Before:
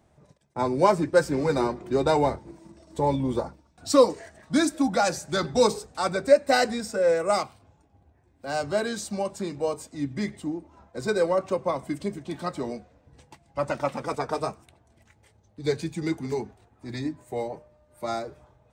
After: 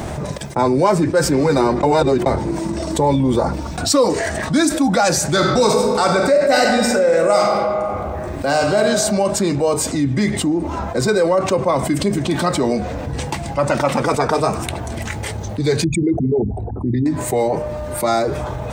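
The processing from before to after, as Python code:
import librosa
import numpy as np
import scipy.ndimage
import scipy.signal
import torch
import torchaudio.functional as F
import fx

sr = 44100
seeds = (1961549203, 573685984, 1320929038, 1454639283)

y = fx.reverb_throw(x, sr, start_s=5.26, length_s=3.54, rt60_s=1.2, drr_db=3.0)
y = fx.envelope_sharpen(y, sr, power=3.0, at=(15.84, 17.06))
y = fx.edit(y, sr, fx.reverse_span(start_s=1.83, length_s=0.43), tone=tone)
y = fx.env_flatten(y, sr, amount_pct=70)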